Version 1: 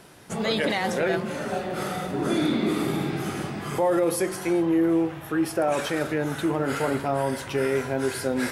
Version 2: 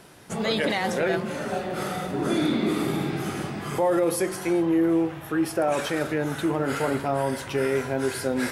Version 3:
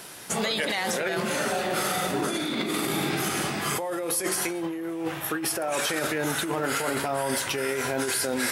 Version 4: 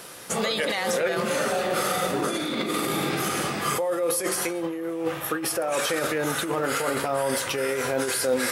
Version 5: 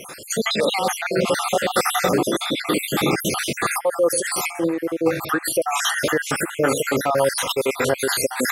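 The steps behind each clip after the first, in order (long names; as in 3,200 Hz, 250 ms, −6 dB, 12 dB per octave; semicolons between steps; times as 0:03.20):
no processing that can be heard
compressor whose output falls as the input rises −27 dBFS, ratio −1; spectral tilt +2.5 dB per octave; brickwall limiter −20 dBFS, peak gain reduction 11 dB; level +3 dB
hollow resonant body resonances 510/1,200 Hz, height 9 dB, ringing for 45 ms
time-frequency cells dropped at random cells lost 58%; level +8.5 dB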